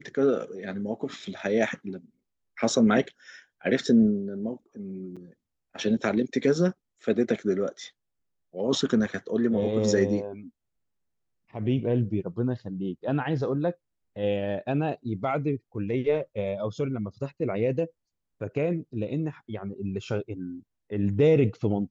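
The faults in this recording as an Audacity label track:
5.160000	5.170000	gap 6.1 ms

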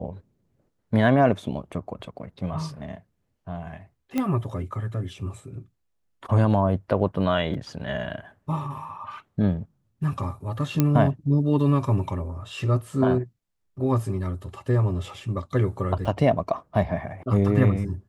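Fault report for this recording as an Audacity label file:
4.180000	4.180000	pop -13 dBFS
7.540000	7.540000	gap 3.5 ms
10.800000	10.800000	pop -7 dBFS
16.050000	16.050000	gap 3.9 ms

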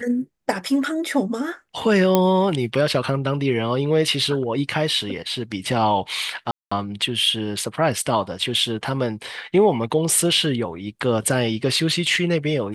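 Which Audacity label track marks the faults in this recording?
2.150000	2.150000	pop -3 dBFS
6.510000	6.710000	gap 0.205 s

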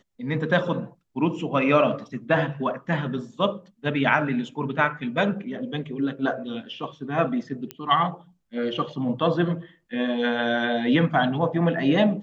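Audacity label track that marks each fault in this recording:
7.710000	7.710000	pop -16 dBFS

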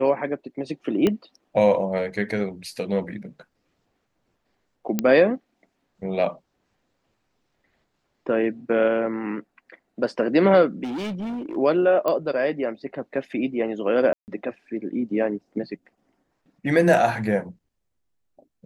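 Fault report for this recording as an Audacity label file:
1.070000	1.070000	pop -9 dBFS
4.990000	4.990000	pop -8 dBFS
10.830000	11.570000	clipped -27 dBFS
12.080000	12.080000	pop -12 dBFS
14.130000	14.280000	gap 0.149 s

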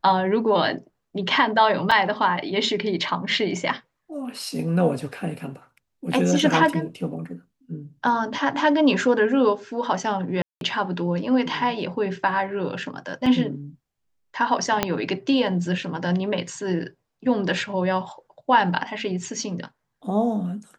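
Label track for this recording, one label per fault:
1.910000	1.920000	gap 5.1 ms
10.420000	10.610000	gap 0.192 s
13.260000	13.260000	gap 3.7 ms
14.830000	14.830000	pop -4 dBFS

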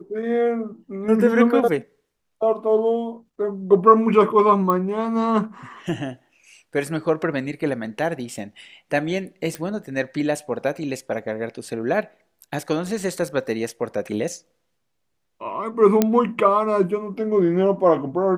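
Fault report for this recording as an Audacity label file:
4.700000	4.700000	pop -11 dBFS
9.550000	9.550000	pop
16.020000	16.020000	pop -3 dBFS

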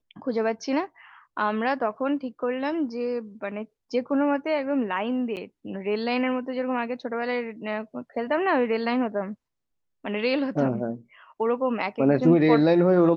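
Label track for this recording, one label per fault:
5.360000	5.370000	gap 8.7 ms

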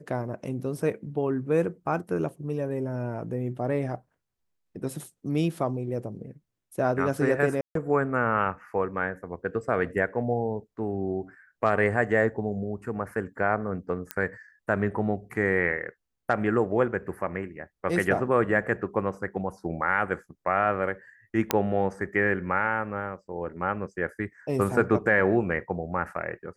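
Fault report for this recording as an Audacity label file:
7.610000	7.750000	gap 0.143 s
14.110000	14.110000	pop -12 dBFS
21.510000	21.510000	pop -5 dBFS

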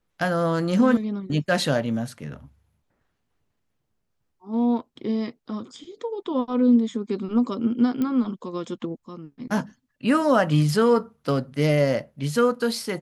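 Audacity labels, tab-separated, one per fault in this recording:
8.020000	8.020000	pop -15 dBFS

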